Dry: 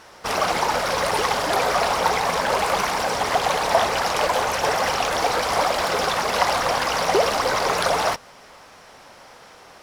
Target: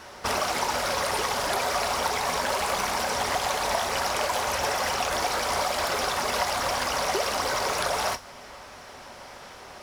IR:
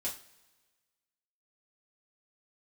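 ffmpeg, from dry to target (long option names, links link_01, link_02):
-filter_complex "[0:a]acrossover=split=930|2500|5600[link_01][link_02][link_03][link_04];[link_01]acompressor=threshold=-33dB:ratio=4[link_05];[link_02]acompressor=threshold=-33dB:ratio=4[link_06];[link_03]acompressor=threshold=-39dB:ratio=4[link_07];[link_04]acompressor=threshold=-36dB:ratio=4[link_08];[link_05][link_06][link_07][link_08]amix=inputs=4:normalize=0,asplit=2[link_09][link_10];[1:a]atrim=start_sample=2205,lowshelf=frequency=140:gain=11[link_11];[link_10][link_11]afir=irnorm=-1:irlink=0,volume=-8.5dB[link_12];[link_09][link_12]amix=inputs=2:normalize=0"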